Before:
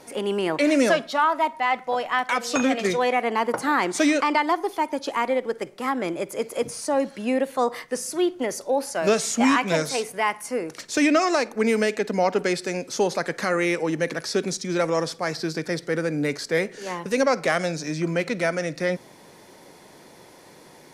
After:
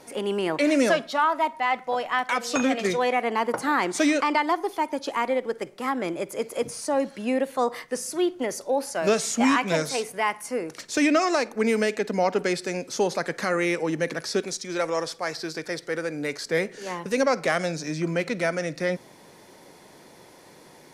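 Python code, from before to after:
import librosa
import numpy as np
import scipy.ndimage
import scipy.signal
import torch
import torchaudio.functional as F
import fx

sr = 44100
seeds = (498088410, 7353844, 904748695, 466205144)

y = fx.peak_eq(x, sr, hz=180.0, db=-9.0, octaves=1.6, at=(14.4, 16.46))
y = y * 10.0 ** (-1.5 / 20.0)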